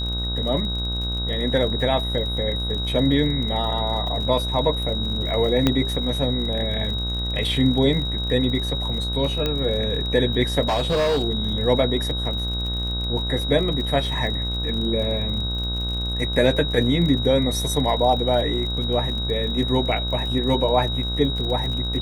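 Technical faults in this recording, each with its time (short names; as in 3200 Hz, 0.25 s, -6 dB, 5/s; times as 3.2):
buzz 60 Hz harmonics 27 -27 dBFS
crackle 51/s -30 dBFS
tone 3800 Hz -27 dBFS
5.67 pop -5 dBFS
9.46 pop -10 dBFS
10.68–11.24 clipped -17 dBFS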